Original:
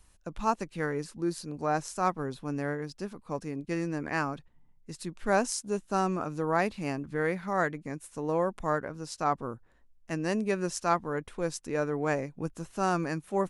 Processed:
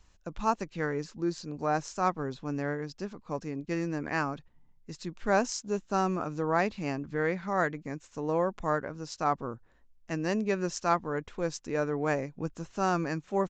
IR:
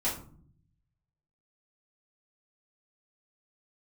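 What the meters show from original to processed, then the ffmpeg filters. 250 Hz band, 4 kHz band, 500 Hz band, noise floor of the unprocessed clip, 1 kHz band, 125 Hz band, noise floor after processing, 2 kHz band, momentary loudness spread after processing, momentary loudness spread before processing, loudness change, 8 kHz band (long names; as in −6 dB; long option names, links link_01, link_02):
0.0 dB, 0.0 dB, 0.0 dB, −62 dBFS, 0.0 dB, 0.0 dB, −62 dBFS, 0.0 dB, 9 LU, 10 LU, 0.0 dB, −2.5 dB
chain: -af "aresample=16000,aresample=44100"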